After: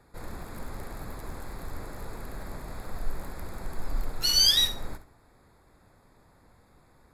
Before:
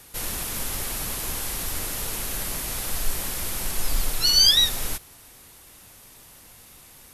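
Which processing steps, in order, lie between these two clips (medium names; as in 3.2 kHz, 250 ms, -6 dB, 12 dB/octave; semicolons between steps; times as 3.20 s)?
local Wiener filter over 15 samples; flutter echo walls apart 11.4 m, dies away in 0.32 s; trim -4 dB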